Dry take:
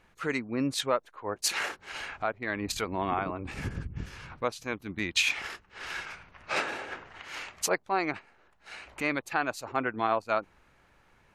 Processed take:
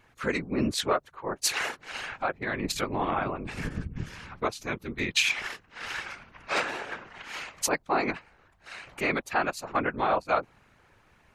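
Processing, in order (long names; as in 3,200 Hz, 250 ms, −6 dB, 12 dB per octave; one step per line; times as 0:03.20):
random phases in short frames
tape wow and flutter 21 cents
level +2 dB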